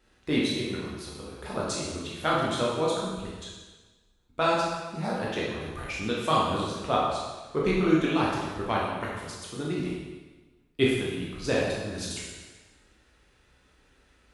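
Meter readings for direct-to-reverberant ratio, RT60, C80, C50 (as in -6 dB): -5.5 dB, 1.3 s, 2.5 dB, -0.5 dB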